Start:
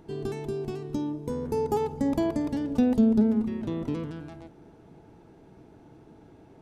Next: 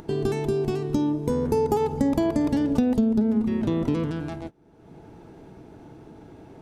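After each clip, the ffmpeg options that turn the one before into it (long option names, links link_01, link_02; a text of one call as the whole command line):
ffmpeg -i in.wav -af "acompressor=threshold=-26dB:ratio=10,agate=range=-26dB:threshold=-43dB:ratio=16:detection=peak,acompressor=mode=upward:threshold=-33dB:ratio=2.5,volume=8dB" out.wav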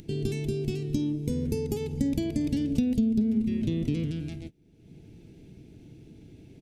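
ffmpeg -i in.wav -af "firequalizer=gain_entry='entry(130,0);entry(1000,-27);entry(2300,-1)':delay=0.05:min_phase=1" out.wav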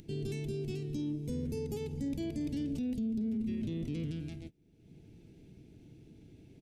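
ffmpeg -i in.wav -af "alimiter=limit=-23dB:level=0:latency=1:release=10,volume=-6dB" out.wav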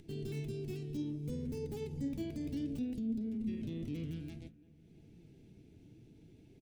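ffmpeg -i in.wav -filter_complex "[0:a]flanger=delay=2.3:depth=9.9:regen=72:speed=0.61:shape=triangular,acrossover=split=2900[link_01][link_02];[link_01]aecho=1:1:341|682|1023|1364:0.0891|0.0499|0.0279|0.0157[link_03];[link_02]aeval=exprs='(mod(447*val(0)+1,2)-1)/447':channel_layout=same[link_04];[link_03][link_04]amix=inputs=2:normalize=0,volume=1dB" out.wav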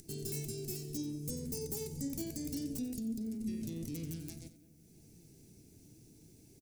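ffmpeg -i in.wav -af "aexciter=amount=9.3:drive=4.9:freq=4800,aecho=1:1:91|182|273:0.2|0.0678|0.0231,volume=-1.5dB" out.wav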